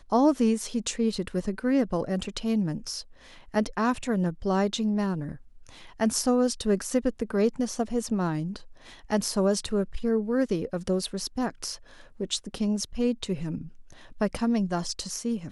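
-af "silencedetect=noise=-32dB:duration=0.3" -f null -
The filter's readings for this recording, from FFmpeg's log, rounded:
silence_start: 3.01
silence_end: 3.54 | silence_duration: 0.54
silence_start: 5.33
silence_end: 6.00 | silence_duration: 0.67
silence_start: 8.56
silence_end: 9.10 | silence_duration: 0.54
silence_start: 11.75
silence_end: 12.20 | silence_duration: 0.46
silence_start: 13.61
silence_end: 14.21 | silence_duration: 0.60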